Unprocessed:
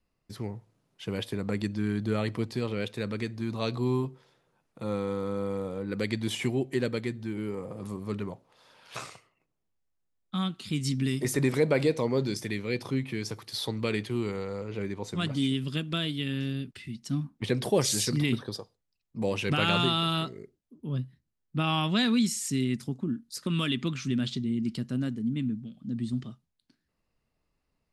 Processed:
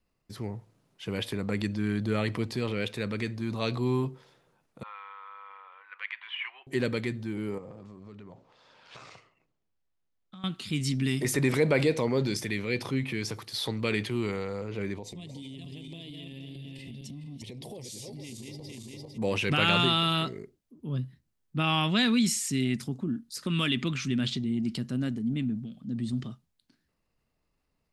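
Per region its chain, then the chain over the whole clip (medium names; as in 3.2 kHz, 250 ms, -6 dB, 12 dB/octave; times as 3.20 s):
4.83–6.67 s: elliptic band-pass 1–3 kHz, stop band 70 dB + distance through air 98 m
7.58–10.44 s: median filter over 5 samples + low-pass 7.6 kHz 24 dB/octave + compression 10:1, threshold -43 dBFS
14.97–19.18 s: backward echo that repeats 227 ms, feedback 45%, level -5 dB + compression 16:1, threshold -38 dBFS + Butterworth band-stop 1.4 kHz, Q 1.2
whole clip: dynamic bell 2.3 kHz, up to +4 dB, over -46 dBFS, Q 1.2; transient shaper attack -1 dB, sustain +4 dB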